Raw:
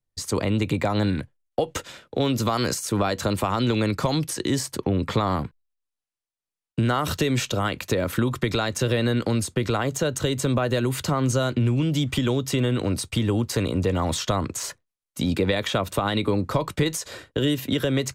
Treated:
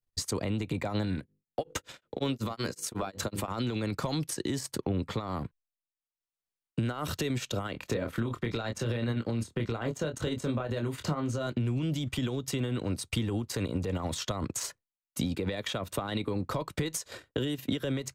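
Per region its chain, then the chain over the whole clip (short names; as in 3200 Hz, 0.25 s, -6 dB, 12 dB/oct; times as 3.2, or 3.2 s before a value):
1.18–3.48 notches 50/100/150/200/250/300/350/400/450/500 Hz + beating tremolo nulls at 5.4 Hz
7.72–11.47 high shelf 5500 Hz -9.5 dB + doubler 26 ms -6 dB
whole clip: limiter -19.5 dBFS; transient shaper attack +5 dB, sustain -11 dB; gain -4.5 dB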